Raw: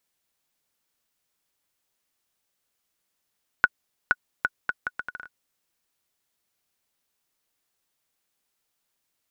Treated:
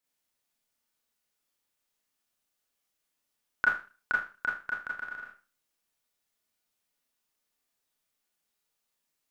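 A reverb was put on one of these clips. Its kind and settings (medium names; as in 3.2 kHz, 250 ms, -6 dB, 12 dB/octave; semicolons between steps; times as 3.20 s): Schroeder reverb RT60 0.35 s, combs from 26 ms, DRR -4 dB; trim -9 dB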